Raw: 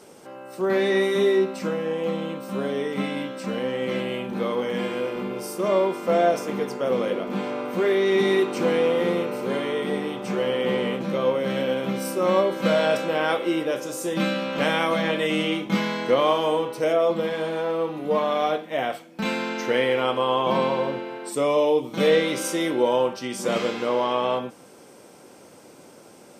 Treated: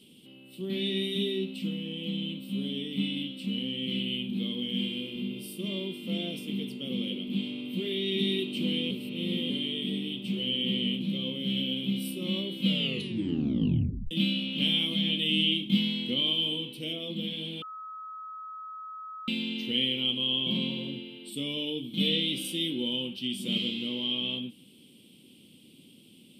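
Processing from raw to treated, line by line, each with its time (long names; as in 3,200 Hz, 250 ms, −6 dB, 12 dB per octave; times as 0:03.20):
0:08.91–0:09.50: reverse
0:12.66: tape stop 1.45 s
0:17.62–0:19.28: beep over 1,280 Hz −8 dBFS
whole clip: drawn EQ curve 100 Hz 0 dB, 240 Hz +5 dB, 670 Hz −24 dB, 1,600 Hz −26 dB, 3,100 Hz +14 dB, 6,200 Hz −16 dB, 9,400 Hz 0 dB; level −5 dB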